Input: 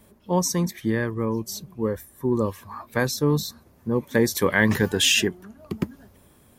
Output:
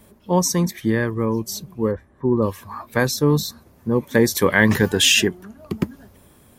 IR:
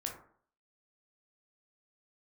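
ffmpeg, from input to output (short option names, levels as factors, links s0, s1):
-filter_complex "[0:a]asplit=3[s0][s1][s2];[s0]afade=t=out:st=1.91:d=0.02[s3];[s1]lowpass=1600,afade=t=in:st=1.91:d=0.02,afade=t=out:st=2.41:d=0.02[s4];[s2]afade=t=in:st=2.41:d=0.02[s5];[s3][s4][s5]amix=inputs=3:normalize=0,volume=1.58"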